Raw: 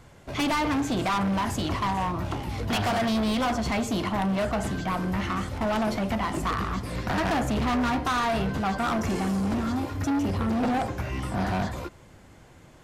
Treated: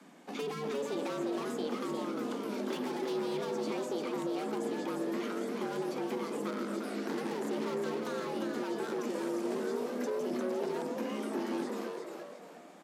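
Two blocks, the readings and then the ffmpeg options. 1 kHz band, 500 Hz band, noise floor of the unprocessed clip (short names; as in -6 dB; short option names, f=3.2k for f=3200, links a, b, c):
-13.0 dB, -2.5 dB, -52 dBFS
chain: -filter_complex "[0:a]acrossover=split=120|310|4000[a][b][c][d];[a]acompressor=threshold=-34dB:ratio=4[e];[b]acompressor=threshold=-32dB:ratio=4[f];[c]acompressor=threshold=-40dB:ratio=4[g];[d]acompressor=threshold=-48dB:ratio=4[h];[e][f][g][h]amix=inputs=4:normalize=0,asplit=6[i][j][k][l][m][n];[j]adelay=351,afreqshift=120,volume=-5dB[o];[k]adelay=702,afreqshift=240,volume=-13.6dB[p];[l]adelay=1053,afreqshift=360,volume=-22.3dB[q];[m]adelay=1404,afreqshift=480,volume=-30.9dB[r];[n]adelay=1755,afreqshift=600,volume=-39.5dB[s];[i][o][p][q][r][s]amix=inputs=6:normalize=0,afreqshift=150,volume=-5dB"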